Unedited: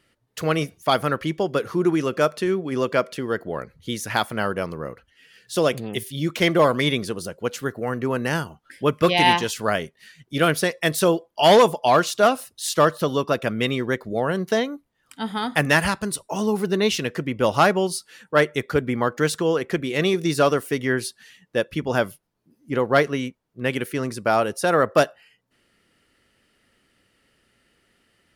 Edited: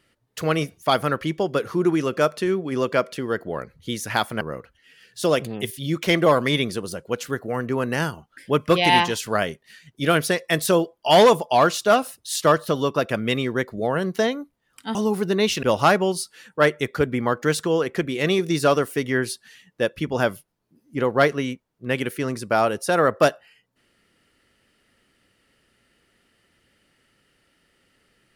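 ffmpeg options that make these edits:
ffmpeg -i in.wav -filter_complex "[0:a]asplit=4[link_01][link_02][link_03][link_04];[link_01]atrim=end=4.412[link_05];[link_02]atrim=start=4.738:end=15.282[link_06];[link_03]atrim=start=16.368:end=17.052[link_07];[link_04]atrim=start=17.378[link_08];[link_05][link_06]acrossfade=duration=0.004:curve1=hsin:curve2=hsin[link_09];[link_09][link_07]acrossfade=duration=0.004:curve1=hsin:curve2=hsin[link_10];[link_10][link_08]acrossfade=duration=0.004:curve1=hsin:curve2=hsin" out.wav

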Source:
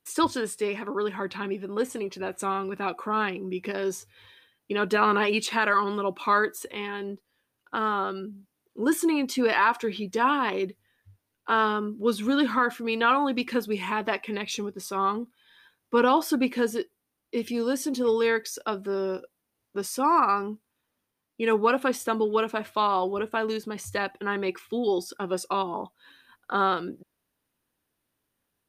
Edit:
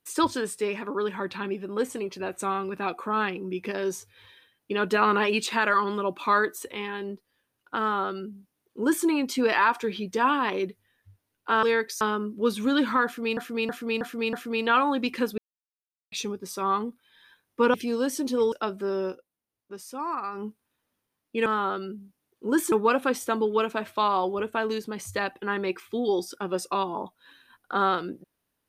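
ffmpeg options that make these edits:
ffmpeg -i in.wav -filter_complex "[0:a]asplit=15[link_01][link_02][link_03][link_04][link_05][link_06][link_07][link_08][link_09][link_10][link_11][link_12][link_13][link_14][link_15];[link_01]atrim=end=11.632[link_16];[link_02]atrim=start=18.188:end=18.572[link_17];[link_03]atrim=start=11.628:end=12.992[link_18];[link_04]atrim=start=12.668:end=12.992[link_19];[link_05]atrim=start=12.668:end=12.992[link_20];[link_06]atrim=start=12.668:end=12.992[link_21];[link_07]atrim=start=12.668:end=13.72,asetpts=PTS-STARTPTS,afade=type=out:start_time=1.048:duration=0.004:curve=hsin[link_22];[link_08]atrim=start=13.72:end=14.46,asetpts=PTS-STARTPTS,volume=0[link_23];[link_09]atrim=start=14.46:end=16.082,asetpts=PTS-STARTPTS,afade=type=in:duration=0.004:curve=hsin[link_24];[link_10]atrim=start=17.408:end=18.192[link_25];[link_11]atrim=start=18.568:end=19.26,asetpts=PTS-STARTPTS,afade=type=out:start_time=0.562:duration=0.13:silence=0.316228[link_26];[link_12]atrim=start=19.26:end=20.37,asetpts=PTS-STARTPTS,volume=-10dB[link_27];[link_13]atrim=start=20.37:end=21.512,asetpts=PTS-STARTPTS,afade=type=in:duration=0.13:silence=0.316228[link_28];[link_14]atrim=start=7.798:end=9.062[link_29];[link_15]atrim=start=21.508[link_30];[link_16][link_17]acrossfade=duration=0.004:curve1=hsin:curve2=hsin[link_31];[link_31][link_18]acrossfade=duration=0.004:curve1=hsin:curve2=hsin[link_32];[link_32][link_19]acrossfade=duration=0.004:curve1=hsin:curve2=hsin[link_33];[link_33][link_20]acrossfade=duration=0.004:curve1=hsin:curve2=hsin[link_34];[link_34][link_21]acrossfade=duration=0.004:curve1=hsin:curve2=hsin[link_35];[link_22][link_23][link_24]concat=n=3:v=0:a=1[link_36];[link_35][link_36]acrossfade=duration=0.004:curve1=hsin:curve2=hsin[link_37];[link_37][link_25]acrossfade=duration=0.004:curve1=hsin:curve2=hsin[link_38];[link_26][link_27][link_28]concat=n=3:v=0:a=1[link_39];[link_38][link_39]acrossfade=duration=0.004:curve1=hsin:curve2=hsin[link_40];[link_40][link_29]acrossfade=duration=0.004:curve1=hsin:curve2=hsin[link_41];[link_41][link_30]acrossfade=duration=0.004:curve1=hsin:curve2=hsin" out.wav

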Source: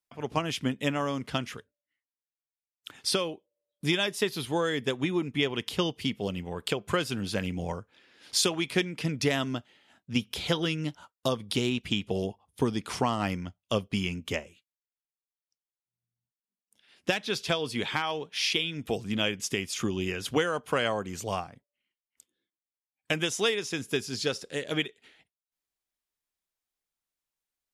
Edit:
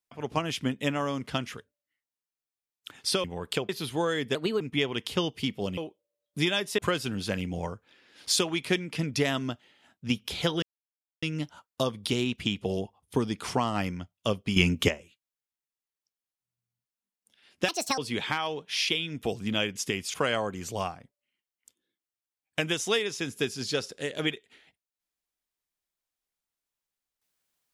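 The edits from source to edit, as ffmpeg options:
ffmpeg -i in.wav -filter_complex "[0:a]asplit=13[link_01][link_02][link_03][link_04][link_05][link_06][link_07][link_08][link_09][link_10][link_11][link_12][link_13];[link_01]atrim=end=3.242[link_14];[link_02]atrim=start=6.388:end=6.842[link_15];[link_03]atrim=start=4.248:end=4.914[link_16];[link_04]atrim=start=4.91:end=5.22,asetpts=PTS-STARTPTS,asetrate=53802,aresample=44100[link_17];[link_05]atrim=start=5.216:end=6.392[link_18];[link_06]atrim=start=3.238:end=4.252[link_19];[link_07]atrim=start=6.838:end=10.68,asetpts=PTS-STARTPTS,afade=type=out:start_time=3.838:duration=0.004:curve=hsin,apad=pad_dur=0.6[link_20];[link_08]atrim=start=10.68:end=14.022,asetpts=PTS-STARTPTS,afade=type=in:duration=0.004:curve=hsin[link_21];[link_09]atrim=start=14.018:end=14.342,asetpts=PTS-STARTPTS,volume=10dB[link_22];[link_10]atrim=start=14.338:end=17.144[link_23];[link_11]atrim=start=17.14:end=17.62,asetpts=PTS-STARTPTS,asetrate=71883,aresample=44100[link_24];[link_12]atrim=start=17.616:end=19.782[link_25];[link_13]atrim=start=20.658[link_26];[link_14][link_15]acrossfade=duration=0.004:curve1=hsin:curve2=hsin[link_27];[link_27][link_16]acrossfade=duration=0.004:curve1=hsin:curve2=hsin[link_28];[link_28][link_17]acrossfade=duration=0.004:curve1=hsin:curve2=hsin[link_29];[link_29][link_18]acrossfade=duration=0.004:curve1=hsin:curve2=hsin[link_30];[link_30][link_19]acrossfade=duration=0.004:curve1=hsin:curve2=hsin[link_31];[link_20][link_21]concat=n=2:v=0:a=1[link_32];[link_31][link_32]acrossfade=duration=0.004:curve1=hsin:curve2=hsin[link_33];[link_33][link_22]acrossfade=duration=0.004:curve1=hsin:curve2=hsin[link_34];[link_34][link_23]acrossfade=duration=0.004:curve1=hsin:curve2=hsin[link_35];[link_35][link_24]acrossfade=duration=0.004:curve1=hsin:curve2=hsin[link_36];[link_36][link_25]acrossfade=duration=0.004:curve1=hsin:curve2=hsin[link_37];[link_37][link_26]acrossfade=duration=0.004:curve1=hsin:curve2=hsin" out.wav

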